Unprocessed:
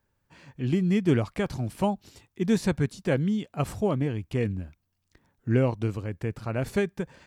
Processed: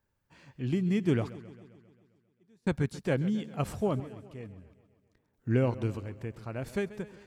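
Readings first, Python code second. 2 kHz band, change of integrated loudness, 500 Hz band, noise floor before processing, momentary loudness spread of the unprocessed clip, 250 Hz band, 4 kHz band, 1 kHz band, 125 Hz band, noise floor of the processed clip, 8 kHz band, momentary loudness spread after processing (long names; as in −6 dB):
−5.5 dB, −4.0 dB, −5.0 dB, −77 dBFS, 9 LU, −5.5 dB, −6.5 dB, −6.5 dB, −5.0 dB, −76 dBFS, −7.5 dB, 17 LU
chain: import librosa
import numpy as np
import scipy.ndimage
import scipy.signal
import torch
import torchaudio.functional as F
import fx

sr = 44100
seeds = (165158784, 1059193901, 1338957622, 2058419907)

y = fx.tremolo_random(x, sr, seeds[0], hz=1.5, depth_pct=100)
y = fx.echo_warbled(y, sr, ms=133, feedback_pct=62, rate_hz=2.8, cents=86, wet_db=-17)
y = F.gain(torch.from_numpy(y), -3.5).numpy()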